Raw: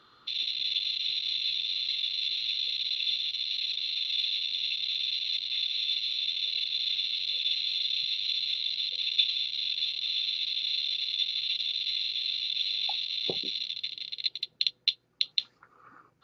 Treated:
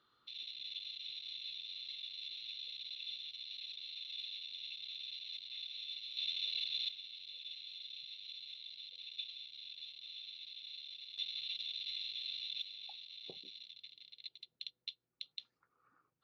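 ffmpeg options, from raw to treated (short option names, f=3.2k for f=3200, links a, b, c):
-af "asetnsamples=n=441:p=0,asendcmd='6.17 volume volume -8dB;6.89 volume volume -19dB;11.18 volume volume -11.5dB;12.62 volume volume -19dB',volume=-15.5dB"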